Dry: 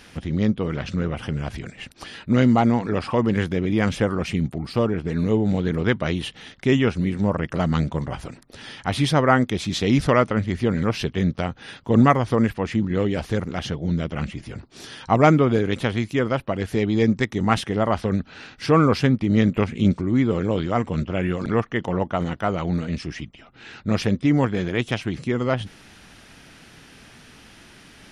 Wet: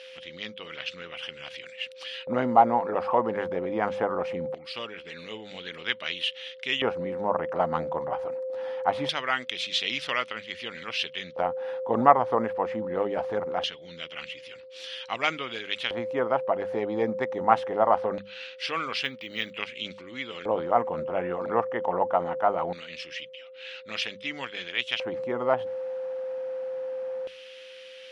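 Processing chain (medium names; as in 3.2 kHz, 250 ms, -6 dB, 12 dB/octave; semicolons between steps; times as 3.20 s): whistle 520 Hz -27 dBFS; LFO band-pass square 0.22 Hz 840–3000 Hz; hum notches 50/100/150/200 Hz; 19.04–19.51 s: decimation joined by straight lines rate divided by 2×; trim +5.5 dB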